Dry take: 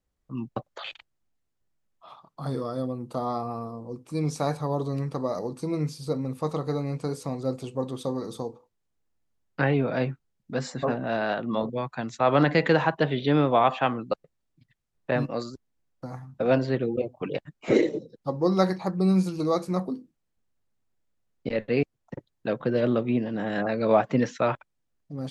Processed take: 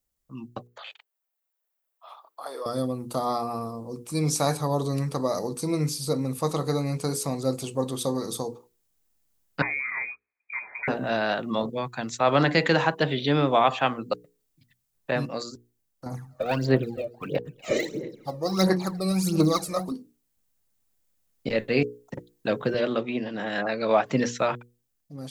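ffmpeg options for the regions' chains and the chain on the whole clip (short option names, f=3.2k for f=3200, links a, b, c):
-filter_complex "[0:a]asettb=1/sr,asplit=3[a][b][c];[a]atrim=end=0.674[d];[b]atrim=start=0.67:end=2.66,asetpts=PTS-STARTPTS,afade=t=in:d=0.004:c=qsin,afade=t=out:st=1.986:d=0.004:c=qsin,highpass=f=490:w=0.5412,highpass=f=490:w=1.3066,equalizer=f=6.6k:t=o:w=2.1:g=-10.5[e];[c]atrim=start=2.656[f];[d][e]acrossfade=d=0.004:c1=hsin:c2=qsin[g];[g][f]acrossfade=d=0.004:c1=qsin:c2=hsin,asettb=1/sr,asplit=3[h][i][j];[h]atrim=end=9.624[k];[i]atrim=start=9.62:end=10.88,asetpts=PTS-STARTPTS,afade=t=in:d=0.004:c=qsin,afade=t=out:st=1.256:d=0.004:c=qsin,highpass=f=310:p=1,acompressor=threshold=-38dB:ratio=2:attack=3.2:release=140:knee=1:detection=peak,lowpass=f=2.2k:t=q:w=0.5098,lowpass=f=2.2k:t=q:w=0.6013,lowpass=f=2.2k:t=q:w=0.9,lowpass=f=2.2k:t=q:w=2.563,afreqshift=-2600[l];[j]atrim=start=10.876[m];[k][l]acrossfade=d=0.004:c1=hsin:c2=qsin[n];[n][m]acrossfade=d=0.004:c1=qsin:c2=hsin,asettb=1/sr,asplit=3[o][p][q];[o]atrim=end=16.064[r];[p]atrim=start=16.06:end=19.92,asetpts=PTS-STARTPTS,afade=t=in:d=0.004:c=qsin,afade=t=out:st=3.856:d=0.004:c=qsin,asplit=2[s][t];[t]adelay=243,lowpass=f=4.3k:p=1,volume=-21dB,asplit=2[u][v];[v]adelay=243,lowpass=f=4.3k:p=1,volume=0.34,asplit=2[w][x];[x]adelay=243,lowpass=f=4.3k:p=1,volume=0.34[y];[s][u][w][y]amix=inputs=4:normalize=0,atrim=end_sample=170226,aphaser=in_gain=1:out_gain=1:delay=1.7:decay=0.71:speed=1.5:type=sinusoidal[z];[q]atrim=start=19.916[aa];[r][z]acrossfade=d=0.004:c1=hsin:c2=qsin[ab];[ab][aa]acrossfade=d=0.004:c1=qsin:c2=hsin,asettb=1/sr,asplit=3[ac][ad][ae];[ac]atrim=end=22.744[af];[ad]atrim=start=22.74:end=24.06,asetpts=PTS-STARTPTS,afade=t=in:d=0.004:c=qsin,afade=t=out:st=1.316:d=0.004:c=qsin,highpass=110,lowpass=5.2k,lowshelf=f=420:g=-7[ag];[ae]atrim=start=24.056[ah];[af][ag]acrossfade=d=0.004:c1=hsin:c2=qsin[ai];[ai][ah]acrossfade=d=0.004:c1=qsin:c2=hsin,aemphasis=mode=production:type=75kf,bandreject=f=60:t=h:w=6,bandreject=f=120:t=h:w=6,bandreject=f=180:t=h:w=6,bandreject=f=240:t=h:w=6,bandreject=f=300:t=h:w=6,bandreject=f=360:t=h:w=6,bandreject=f=420:t=h:w=6,bandreject=f=480:t=h:w=6,dynaudnorm=f=450:g=7:m=7.5dB,volume=-5dB"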